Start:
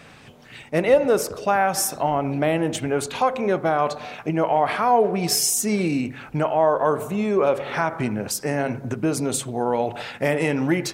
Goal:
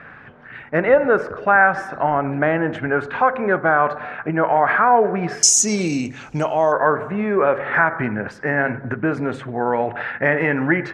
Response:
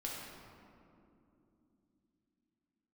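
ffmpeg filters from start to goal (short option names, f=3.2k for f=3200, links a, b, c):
-af "asetnsamples=n=441:p=0,asendcmd='5.43 lowpass f 6500;6.72 lowpass f 1700',lowpass=f=1.6k:t=q:w=4.3,volume=1dB"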